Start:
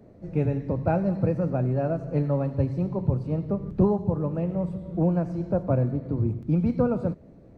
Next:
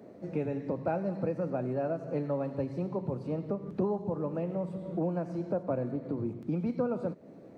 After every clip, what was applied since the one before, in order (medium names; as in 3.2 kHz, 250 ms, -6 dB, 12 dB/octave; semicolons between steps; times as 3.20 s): high-pass 230 Hz 12 dB/octave; compression 2:1, threshold -38 dBFS, peak gain reduction 11 dB; trim +3.5 dB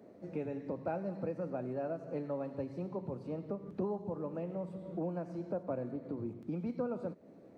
peaking EQ 140 Hz -4.5 dB 0.36 oct; trim -5.5 dB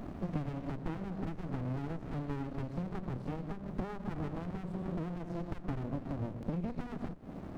compression 4:1, threshold -49 dBFS, peak gain reduction 15 dB; sliding maximum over 65 samples; trim +15.5 dB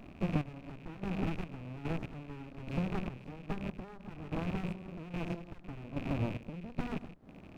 rattle on loud lows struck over -45 dBFS, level -40 dBFS; trance gate ".x...xx." 73 bpm -12 dB; trim +4 dB